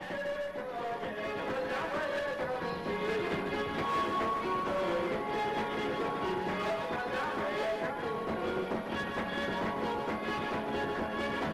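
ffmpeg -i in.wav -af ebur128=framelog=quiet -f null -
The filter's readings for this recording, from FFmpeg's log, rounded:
Integrated loudness:
  I:         -33.8 LUFS
  Threshold: -43.8 LUFS
Loudness range:
  LRA:         1.8 LU
  Threshold: -53.5 LUFS
  LRA low:   -34.4 LUFS
  LRA high:  -32.6 LUFS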